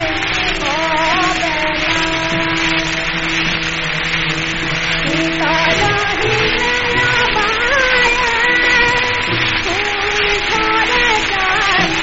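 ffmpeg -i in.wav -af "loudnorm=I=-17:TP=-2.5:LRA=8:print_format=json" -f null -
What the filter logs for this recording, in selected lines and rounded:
"input_i" : "-13.6",
"input_tp" : "-1.4",
"input_lra" : "2.5",
"input_thresh" : "-23.6",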